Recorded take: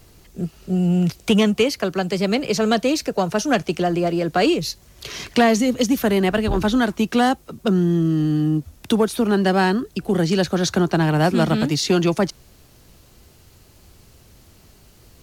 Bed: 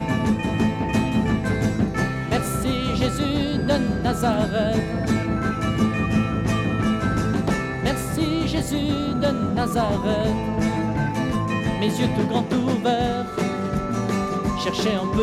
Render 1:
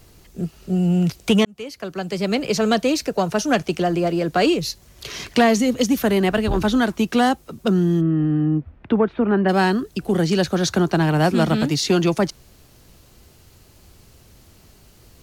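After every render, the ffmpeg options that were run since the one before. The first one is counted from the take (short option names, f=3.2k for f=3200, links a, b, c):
-filter_complex "[0:a]asplit=3[a][b][c];[a]afade=t=out:st=8:d=0.02[d];[b]lowpass=f=2.3k:w=0.5412,lowpass=f=2.3k:w=1.3066,afade=t=in:st=8:d=0.02,afade=t=out:st=9.48:d=0.02[e];[c]afade=t=in:st=9.48:d=0.02[f];[d][e][f]amix=inputs=3:normalize=0,asplit=2[g][h];[g]atrim=end=1.45,asetpts=PTS-STARTPTS,afade=t=out:st=1.446:d=0.004:c=hsin[i];[h]atrim=start=1.45,asetpts=PTS-STARTPTS,afade=t=in:d=0.99[j];[i][j]concat=n=2:v=0:a=1"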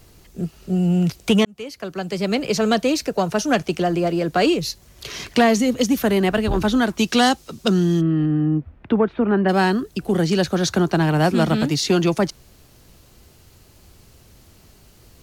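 -filter_complex "[0:a]asettb=1/sr,asplit=3[a][b][c];[a]atrim=end=6.984[d];[b]atrim=start=6.98:end=8.26,asetpts=PTS-STARTPTS,afade=t=in:d=0.004:c=qsin,afade=t=out:st=1.276:d=0.004:c=qsin,equalizer=f=5.1k:w=0.61:g=10.5[e];[c]atrim=start=8.256[f];[d][e]acrossfade=d=0.004:c1=hsin:c2=qsin[g];[g][f]acrossfade=d=0.004:c1=qsin:c2=hsin"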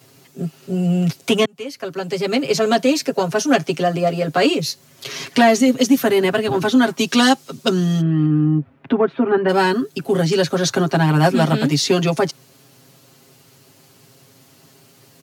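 -af "highpass=f=130:w=0.5412,highpass=f=130:w=1.3066,aecho=1:1:7.4:0.96"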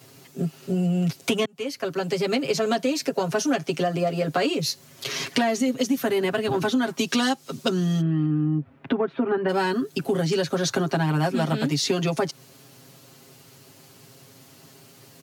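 -af "acompressor=threshold=-21dB:ratio=4"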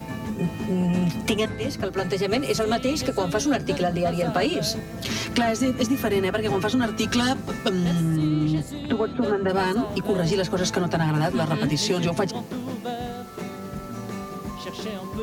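-filter_complex "[1:a]volume=-10dB[a];[0:a][a]amix=inputs=2:normalize=0"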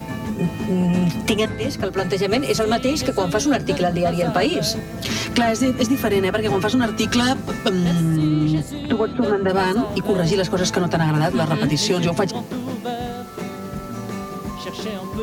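-af "volume=4dB"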